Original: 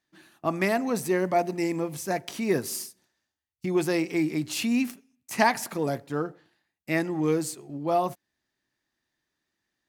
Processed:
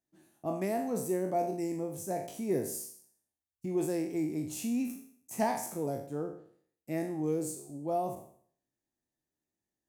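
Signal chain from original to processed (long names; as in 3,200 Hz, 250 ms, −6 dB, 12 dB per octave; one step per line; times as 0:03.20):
peak hold with a decay on every bin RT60 0.56 s
flat-topped bell 2,300 Hz −12.5 dB 2.6 octaves
level −7 dB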